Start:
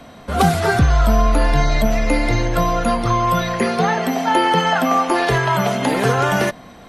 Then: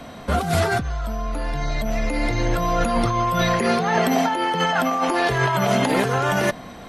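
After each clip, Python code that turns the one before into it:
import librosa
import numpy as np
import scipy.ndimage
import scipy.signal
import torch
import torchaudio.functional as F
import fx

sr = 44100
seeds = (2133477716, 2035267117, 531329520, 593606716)

y = fx.over_compress(x, sr, threshold_db=-20.0, ratio=-1.0)
y = F.gain(torch.from_numpy(y), -1.0).numpy()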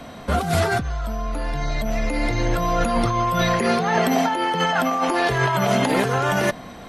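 y = x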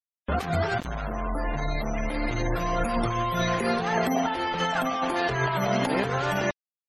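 y = fx.recorder_agc(x, sr, target_db=-13.5, rise_db_per_s=5.4, max_gain_db=30)
y = np.where(np.abs(y) >= 10.0 ** (-22.5 / 20.0), y, 0.0)
y = fx.spec_gate(y, sr, threshold_db=-25, keep='strong')
y = F.gain(torch.from_numpy(y), -5.0).numpy()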